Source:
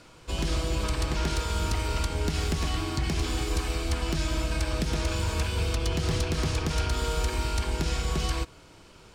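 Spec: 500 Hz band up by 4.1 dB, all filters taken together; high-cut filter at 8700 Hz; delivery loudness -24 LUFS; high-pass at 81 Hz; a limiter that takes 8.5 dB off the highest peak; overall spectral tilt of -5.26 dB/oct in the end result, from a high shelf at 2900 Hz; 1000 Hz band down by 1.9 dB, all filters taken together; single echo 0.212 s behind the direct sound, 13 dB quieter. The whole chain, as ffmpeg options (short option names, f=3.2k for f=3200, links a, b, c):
-af "highpass=81,lowpass=8.7k,equalizer=f=500:t=o:g=6,equalizer=f=1k:t=o:g=-3.5,highshelf=f=2.9k:g=-4.5,alimiter=limit=-23.5dB:level=0:latency=1,aecho=1:1:212:0.224,volume=9dB"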